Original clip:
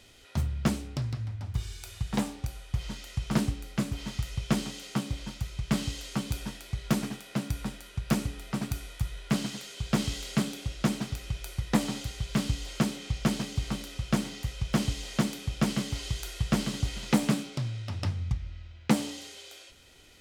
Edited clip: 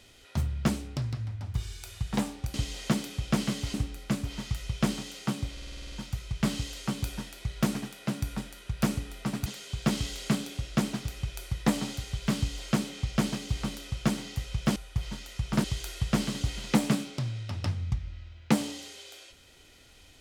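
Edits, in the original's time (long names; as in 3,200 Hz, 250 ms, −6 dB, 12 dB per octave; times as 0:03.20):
0:02.54–0:03.42: swap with 0:14.83–0:16.03
0:05.20: stutter 0.05 s, 9 plays
0:08.74–0:09.53: remove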